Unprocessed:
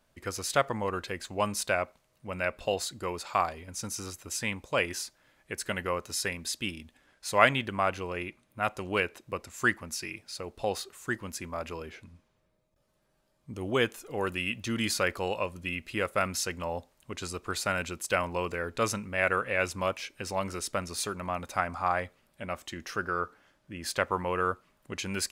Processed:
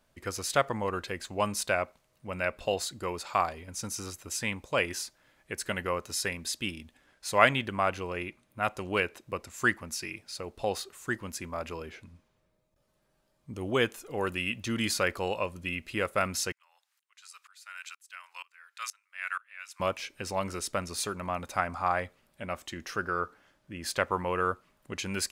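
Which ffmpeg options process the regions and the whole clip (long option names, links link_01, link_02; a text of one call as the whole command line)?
ffmpeg -i in.wav -filter_complex "[0:a]asettb=1/sr,asplit=3[link_01][link_02][link_03];[link_01]atrim=end=16.524[link_04];[link_02]atrim=start=16.52:end=19.8,asetpts=PTS-STARTPTS,afade=type=in:duration=0.004:curve=qsin,afade=type=out:start_time=3.276:duration=0.004:curve=qsin,highpass=frequency=1300:width=0.5412,highpass=frequency=1300:width=1.3066,aeval=exprs='val(0)*pow(10,-26*if(lt(mod(-2.1*n/s,1),2*abs(-2.1)/1000),1-mod(-2.1*n/s,1)/(2*abs(-2.1)/1000),(mod(-2.1*n/s,1)-2*abs(-2.1)/1000)/(1-2*abs(-2.1)/1000))/20)':channel_layout=same[link_05];[link_03]atrim=start=19.796[link_06];[link_04][link_05]acrossfade=duration=0.004:curve1=hsin:curve2=qsin[link_07];[link_07][link_06]acrossfade=duration=0.004:curve1=qsin:curve2=hsin" out.wav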